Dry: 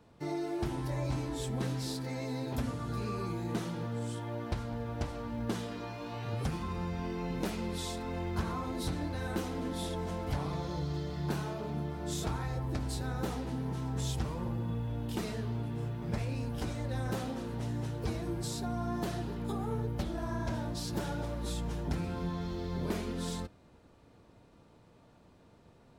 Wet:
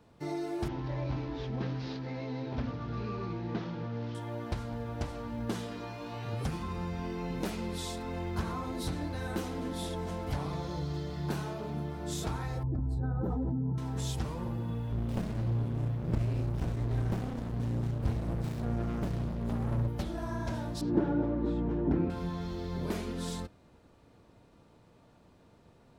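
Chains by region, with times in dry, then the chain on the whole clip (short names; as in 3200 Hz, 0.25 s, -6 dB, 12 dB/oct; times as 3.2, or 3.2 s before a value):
0.68–4.15 CVSD 32 kbps + air absorption 190 m
12.63–13.78 spectral contrast raised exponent 1.7 + band shelf 4500 Hz -12.5 dB 2.6 oct + fast leveller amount 100%
14.92–19.88 low shelf 280 Hz +6.5 dB + running maximum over 65 samples
20.81–22.1 LPF 1700 Hz + bell 310 Hz +14 dB 0.97 oct
whole clip: dry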